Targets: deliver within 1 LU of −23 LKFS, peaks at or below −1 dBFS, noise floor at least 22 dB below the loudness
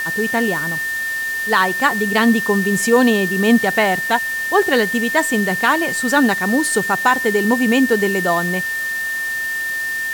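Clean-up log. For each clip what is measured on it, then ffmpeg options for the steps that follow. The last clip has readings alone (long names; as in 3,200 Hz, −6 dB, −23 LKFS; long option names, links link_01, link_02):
interfering tone 1,800 Hz; level of the tone −20 dBFS; background noise floor −23 dBFS; target noise floor −39 dBFS; integrated loudness −16.5 LKFS; sample peak −2.0 dBFS; target loudness −23.0 LKFS
→ -af "bandreject=frequency=1800:width=30"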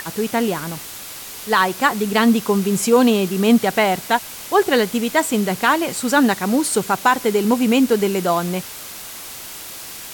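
interfering tone none found; background noise floor −34 dBFS; target noise floor −40 dBFS
→ -af "afftdn=noise_reduction=6:noise_floor=-34"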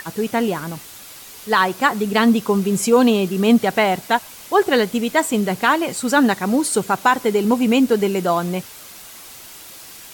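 background noise floor −40 dBFS; integrated loudness −18.0 LKFS; sample peak −3.0 dBFS; target loudness −23.0 LKFS
→ -af "volume=-5dB"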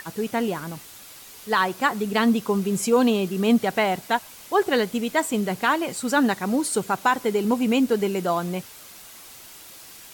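integrated loudness −23.0 LKFS; sample peak −8.0 dBFS; background noise floor −45 dBFS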